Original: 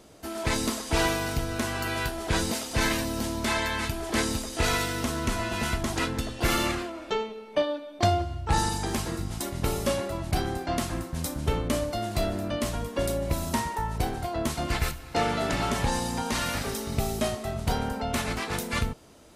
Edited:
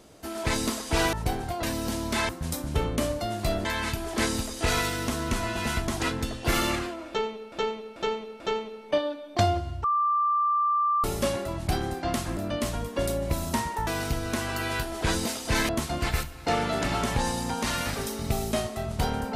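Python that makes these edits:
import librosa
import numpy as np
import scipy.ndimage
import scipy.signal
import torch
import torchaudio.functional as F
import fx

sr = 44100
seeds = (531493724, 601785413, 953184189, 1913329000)

y = fx.edit(x, sr, fx.swap(start_s=1.13, length_s=1.82, other_s=13.87, other_length_s=0.5),
    fx.repeat(start_s=7.04, length_s=0.44, count=4),
    fx.bleep(start_s=8.48, length_s=1.2, hz=1180.0, db=-21.0),
    fx.move(start_s=11.01, length_s=1.36, to_s=3.61), tone=tone)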